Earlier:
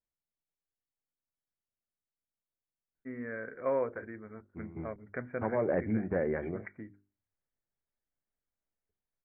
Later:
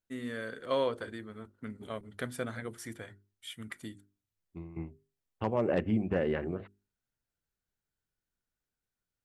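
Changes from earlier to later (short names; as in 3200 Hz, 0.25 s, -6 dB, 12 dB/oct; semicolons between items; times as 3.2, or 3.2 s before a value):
first voice: entry -2.95 s; master: remove rippled Chebyshev low-pass 2300 Hz, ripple 3 dB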